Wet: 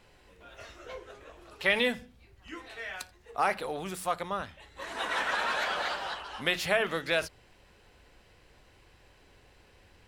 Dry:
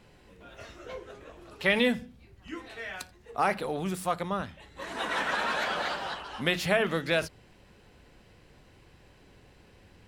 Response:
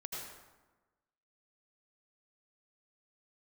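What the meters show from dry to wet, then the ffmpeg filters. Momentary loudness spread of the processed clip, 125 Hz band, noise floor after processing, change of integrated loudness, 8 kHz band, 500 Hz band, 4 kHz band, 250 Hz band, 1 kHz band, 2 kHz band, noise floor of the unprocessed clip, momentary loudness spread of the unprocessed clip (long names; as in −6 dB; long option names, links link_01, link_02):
18 LU, −8.0 dB, −61 dBFS, −1.0 dB, 0.0 dB, −2.5 dB, 0.0 dB, −7.0 dB, −1.0 dB, 0.0 dB, −58 dBFS, 18 LU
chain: -af "equalizer=frequency=180:width_type=o:width=2:gain=-8.5"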